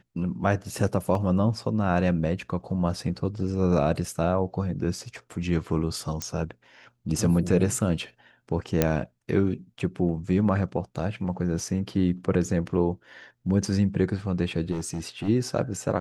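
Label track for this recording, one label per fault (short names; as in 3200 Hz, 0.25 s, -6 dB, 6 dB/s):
1.150000	1.150000	gap 2 ms
6.220000	6.220000	pop -14 dBFS
8.820000	8.820000	pop -6 dBFS
14.710000	15.290000	clipped -25.5 dBFS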